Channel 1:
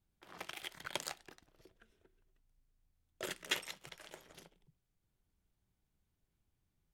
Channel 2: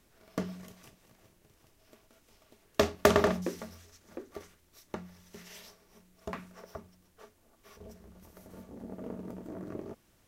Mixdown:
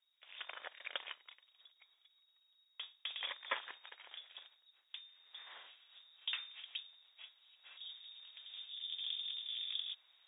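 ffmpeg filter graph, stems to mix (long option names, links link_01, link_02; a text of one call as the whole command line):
ffmpeg -i stem1.wav -i stem2.wav -filter_complex "[0:a]volume=-0.5dB[link_01];[1:a]volume=-1dB,afade=type=in:start_time=3.46:duration=0.33:silence=0.266073,afade=type=in:start_time=5.11:duration=0.37:silence=0.334965[link_02];[link_01][link_02]amix=inputs=2:normalize=0,lowpass=frequency=3200:width_type=q:width=0.5098,lowpass=frequency=3200:width_type=q:width=0.6013,lowpass=frequency=3200:width_type=q:width=0.9,lowpass=frequency=3200:width_type=q:width=2.563,afreqshift=-3800,highpass=510" out.wav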